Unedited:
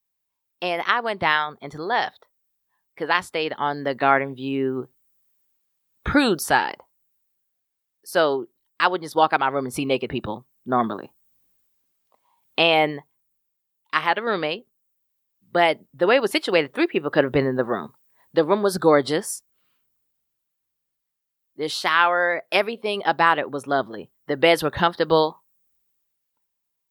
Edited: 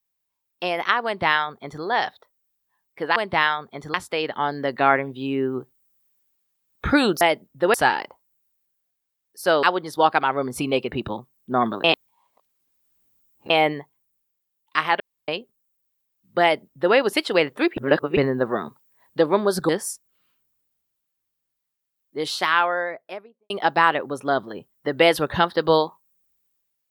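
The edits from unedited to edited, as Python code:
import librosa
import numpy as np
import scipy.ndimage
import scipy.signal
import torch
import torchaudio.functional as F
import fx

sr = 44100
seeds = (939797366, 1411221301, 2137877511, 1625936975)

y = fx.studio_fade_out(x, sr, start_s=21.79, length_s=1.14)
y = fx.edit(y, sr, fx.duplicate(start_s=1.05, length_s=0.78, to_s=3.16),
    fx.cut(start_s=8.32, length_s=0.49),
    fx.reverse_span(start_s=11.02, length_s=1.66),
    fx.room_tone_fill(start_s=14.18, length_s=0.28),
    fx.duplicate(start_s=15.6, length_s=0.53, to_s=6.43),
    fx.reverse_span(start_s=16.95, length_s=0.4),
    fx.cut(start_s=18.87, length_s=0.25), tone=tone)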